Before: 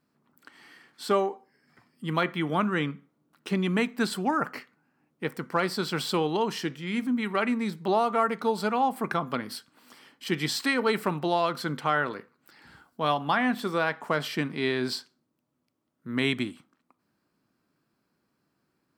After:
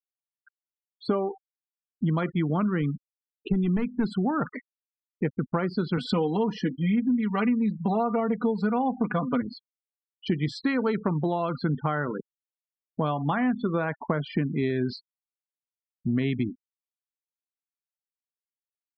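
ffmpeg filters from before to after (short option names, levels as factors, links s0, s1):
-filter_complex "[0:a]asettb=1/sr,asplit=3[s0][s1][s2];[s0]atrim=end=2.814[s3];[s1]atrim=start=2.81:end=4.11,asetpts=PTS-STARTPTS,afade=t=in:d=0.004:c=qsin,afade=t=out:st=1.296:d=0.004:c=qsin,volume=12.6,asoftclip=hard,volume=0.0794[s4];[s2]atrim=start=4.106[s5];[s3][s4]acrossfade=d=0.004:c1=hsin:c2=qsin[s6];[s6][s5]acrossfade=d=0.004:c1=qsin:c2=hsin,asettb=1/sr,asplit=3[s7][s8][s9];[s7]atrim=end=5.974[s10];[s8]atrim=start=5.97:end=9.42,asetpts=PTS-STARTPTS,afade=t=in:d=0.004:c=qsin,afade=t=out:st=3.446:d=0.004:c=qsin,aecho=1:1:4.1:0.89,atrim=end_sample=152145[s11];[s9]atrim=start=9.416[s12];[s10][s11]acrossfade=d=0.004:c1=hsin:c2=qsin[s13];[s13][s12]acrossfade=d=0.004:c1=qsin:c2=hsin,afftfilt=real='re*gte(hypot(re,im),0.0316)':imag='im*gte(hypot(re,im),0.0316)':win_size=1024:overlap=0.75,aemphasis=mode=reproduction:type=riaa,acompressor=threshold=0.0355:ratio=6,volume=2"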